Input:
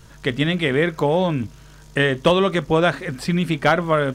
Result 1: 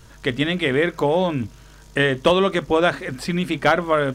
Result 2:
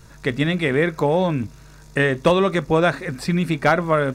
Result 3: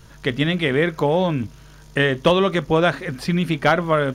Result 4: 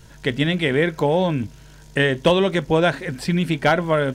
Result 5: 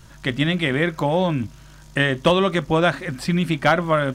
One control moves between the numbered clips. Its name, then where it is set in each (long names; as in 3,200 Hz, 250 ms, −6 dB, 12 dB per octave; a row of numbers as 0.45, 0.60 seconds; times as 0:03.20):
notch filter, centre frequency: 160, 3,100, 7,900, 1,200, 440 Hertz